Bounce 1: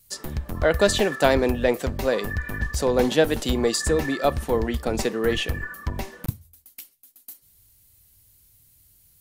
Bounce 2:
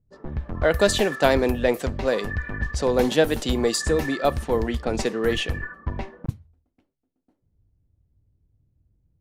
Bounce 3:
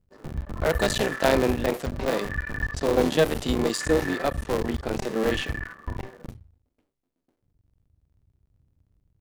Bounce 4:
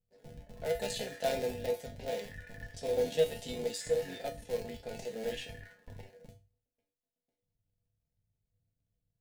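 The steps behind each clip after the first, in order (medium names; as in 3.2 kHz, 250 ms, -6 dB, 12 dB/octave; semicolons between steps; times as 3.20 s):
level-controlled noise filter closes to 380 Hz, open at -19 dBFS
cycle switcher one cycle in 3, muted; harmonic-percussive split percussive -8 dB; trim +3 dB
static phaser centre 310 Hz, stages 6; feedback comb 97 Hz, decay 0.26 s, harmonics odd, mix 90%; trim +1.5 dB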